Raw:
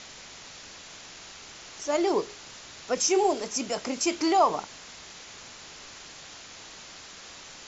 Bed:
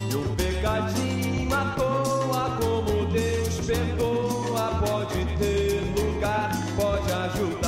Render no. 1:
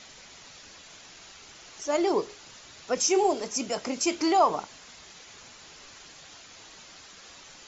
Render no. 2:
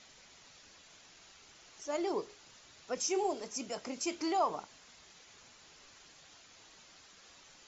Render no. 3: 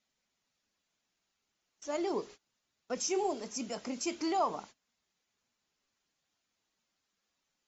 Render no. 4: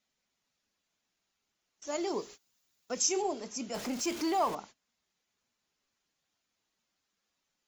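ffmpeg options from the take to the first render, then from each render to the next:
-af "afftdn=nr=6:nf=-46"
-af "volume=0.335"
-af "agate=range=0.0562:threshold=0.00316:ratio=16:detection=peak,equalizer=f=220:w=2.4:g=6.5"
-filter_complex "[0:a]asettb=1/sr,asplit=3[s0][s1][s2];[s0]atrim=end=1.874[s3];[s1]atrim=start=1.87:end=3.22,asetpts=PTS-STARTPTS,afade=t=in:d=0.004:c=qsin,afade=t=out:st=1.346:d=0.004:c=qsin,aemphasis=mode=production:type=50fm[s4];[s2]atrim=start=3.216[s5];[s3][s4]acrossfade=d=0.004:c1=hsin:c2=qsin[s6];[s6][s5]acrossfade=d=0.004:c1=qsin:c2=hsin,asettb=1/sr,asplit=3[s7][s8][s9];[s7]atrim=end=3.744[s10];[s8]atrim=start=3.74:end=4.55,asetpts=PTS-STARTPTS,afade=t=in:d=0.004:c=qsin,afade=t=out:st=0.806:d=0.004:c=qsin,aeval=exprs='val(0)+0.5*0.0133*sgn(val(0))':c=same[s11];[s9]atrim=start=4.546[s12];[s10][s11]acrossfade=d=0.004:c1=hsin:c2=qsin[s13];[s13][s12]acrossfade=d=0.004:c1=qsin:c2=hsin"

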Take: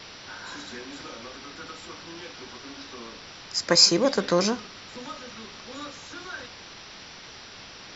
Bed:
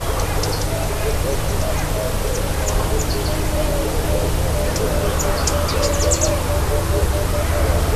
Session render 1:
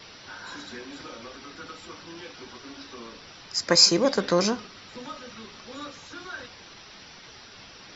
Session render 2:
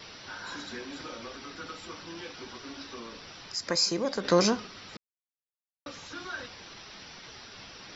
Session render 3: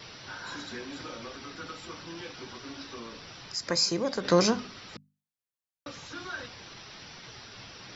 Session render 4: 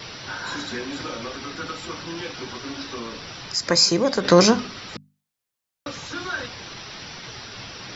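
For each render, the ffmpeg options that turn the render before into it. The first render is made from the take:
-af "afftdn=nr=6:nf=-45"
-filter_complex "[0:a]asettb=1/sr,asplit=3[s0][s1][s2];[s0]atrim=end=2.994[s3];[s1]atrim=start=2.99:end=4.25,asetpts=PTS-STARTPTS,afade=t=in:d=0.004:c=qsin,afade=t=out:st=1.256:d=0.004:c=qsin,acompressor=threshold=0.0112:ratio=1.5:attack=3.2:release=140:knee=1:detection=peak[s4];[s2]atrim=start=4.246[s5];[s3][s4]acrossfade=d=0.004:c1=hsin:c2=qsin[s6];[s6][s5]acrossfade=d=0.004:c1=qsin:c2=hsin,asplit=3[s7][s8][s9];[s7]atrim=end=4.97,asetpts=PTS-STARTPTS,afade=t=out:st=4.966:d=0.004:c=hsin[s10];[s8]atrim=start=4.97:end=5.86,asetpts=PTS-STARTPTS,volume=0[s11];[s9]atrim=start=5.86,asetpts=PTS-STARTPTS,afade=t=in:d=0.004:c=hsin[s12];[s10][s11][s12]concat=n=3:v=0:a=1"
-af "equalizer=f=120:w=1.6:g=7,bandreject=f=50:t=h:w=6,bandreject=f=100:t=h:w=6,bandreject=f=150:t=h:w=6,bandreject=f=200:t=h:w=6,bandreject=f=250:t=h:w=6"
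-af "volume=2.82,alimiter=limit=0.708:level=0:latency=1"

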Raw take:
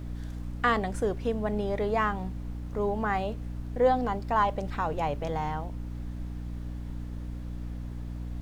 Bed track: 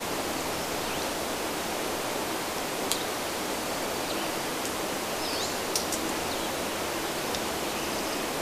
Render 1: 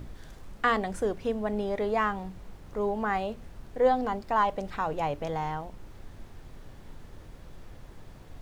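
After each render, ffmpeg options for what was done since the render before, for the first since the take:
-af "bandreject=f=60:t=h:w=6,bandreject=f=120:t=h:w=6,bandreject=f=180:t=h:w=6,bandreject=f=240:t=h:w=6,bandreject=f=300:t=h:w=6"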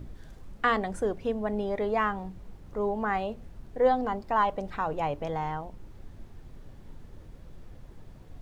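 -af "afftdn=nr=6:nf=-49"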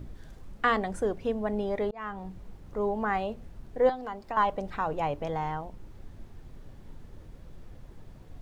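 -filter_complex "[0:a]asettb=1/sr,asplit=3[s0][s1][s2];[s0]atrim=end=3.894[s3];[s1]atrim=start=3.89:end=4.37,asetpts=PTS-STARTPTS,afade=t=in:d=0.004:c=qsin,afade=t=out:st=0.476:d=0.004:c=qsin,acrossover=split=360|1400[s4][s5][s6];[s4]acompressor=threshold=0.00562:ratio=4[s7];[s5]acompressor=threshold=0.0158:ratio=4[s8];[s6]acompressor=threshold=0.00631:ratio=4[s9];[s7][s8][s9]amix=inputs=3:normalize=0[s10];[s2]atrim=start=4.366[s11];[s3][s10]acrossfade=d=0.004:c1=hsin:c2=qsin[s12];[s12][s11]acrossfade=d=0.004:c1=qsin:c2=hsin,asplit=2[s13][s14];[s13]atrim=end=1.91,asetpts=PTS-STARTPTS,afade=t=out:st=1.906:d=0.004:c=hsin[s15];[s14]atrim=start=1.91,asetpts=PTS-STARTPTS,afade=t=in:d=0.42[s16];[s15][s16]concat=n=2:v=0:a=1"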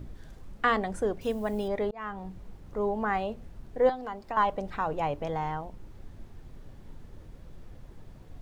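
-filter_complex "[0:a]asettb=1/sr,asplit=3[s0][s1][s2];[s0]atrim=end=1.214[s3];[s1]atrim=start=1.21:end=1.68,asetpts=PTS-STARTPTS,afade=t=in:d=0.004:c=qsin,afade=t=out:st=0.466:d=0.004:c=qsin,aemphasis=mode=production:type=75fm[s4];[s2]atrim=start=1.676[s5];[s3][s4]acrossfade=d=0.004:c1=hsin:c2=qsin[s6];[s6][s5]acrossfade=d=0.004:c1=qsin:c2=hsin"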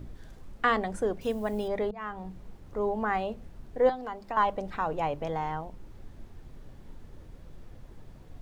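-af "bandreject=f=50:t=h:w=6,bandreject=f=100:t=h:w=6,bandreject=f=150:t=h:w=6,bandreject=f=200:t=h:w=6"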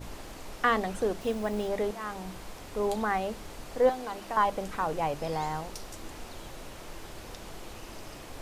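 -filter_complex "[1:a]volume=0.168[s0];[0:a][s0]amix=inputs=2:normalize=0"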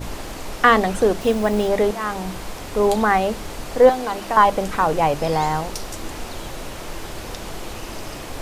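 -af "volume=3.76,alimiter=limit=0.794:level=0:latency=1"

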